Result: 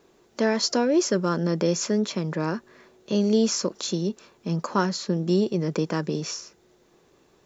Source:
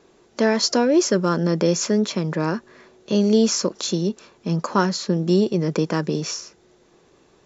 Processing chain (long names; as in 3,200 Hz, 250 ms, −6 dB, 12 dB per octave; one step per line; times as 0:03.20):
bit reduction 12 bits
level −4 dB